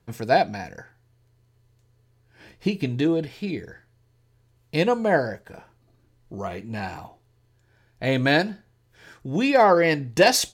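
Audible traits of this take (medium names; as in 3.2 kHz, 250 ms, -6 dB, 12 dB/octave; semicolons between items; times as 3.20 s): noise floor -63 dBFS; spectral tilt -4.5 dB/octave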